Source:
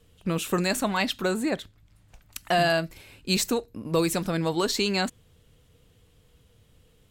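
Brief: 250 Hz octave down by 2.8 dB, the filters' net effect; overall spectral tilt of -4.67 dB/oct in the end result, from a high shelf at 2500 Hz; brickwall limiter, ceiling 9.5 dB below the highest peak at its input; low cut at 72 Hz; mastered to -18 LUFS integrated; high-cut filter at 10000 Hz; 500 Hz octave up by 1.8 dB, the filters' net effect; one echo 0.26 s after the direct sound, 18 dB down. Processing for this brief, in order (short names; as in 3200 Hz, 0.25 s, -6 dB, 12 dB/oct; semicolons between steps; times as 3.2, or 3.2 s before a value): HPF 72 Hz; LPF 10000 Hz; bell 250 Hz -6 dB; bell 500 Hz +4.5 dB; high shelf 2500 Hz -7.5 dB; limiter -22 dBFS; echo 0.26 s -18 dB; gain +14.5 dB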